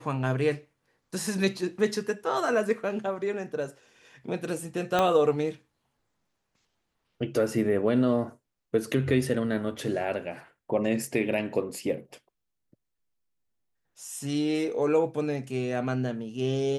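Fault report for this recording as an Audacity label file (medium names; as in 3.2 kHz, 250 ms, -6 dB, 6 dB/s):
4.990000	4.990000	pop -11 dBFS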